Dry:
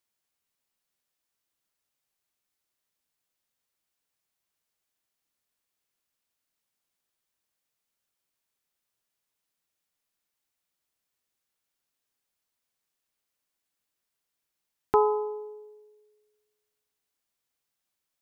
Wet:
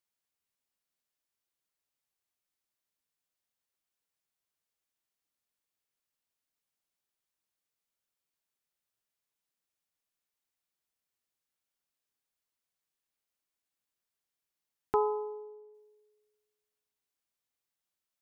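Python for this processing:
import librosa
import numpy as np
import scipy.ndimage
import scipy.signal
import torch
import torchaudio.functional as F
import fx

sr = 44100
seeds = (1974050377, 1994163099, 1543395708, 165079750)

y = fx.lowpass(x, sr, hz=1800.0, slope=12, at=(14.96, 15.73), fade=0.02)
y = y * 10.0 ** (-6.0 / 20.0)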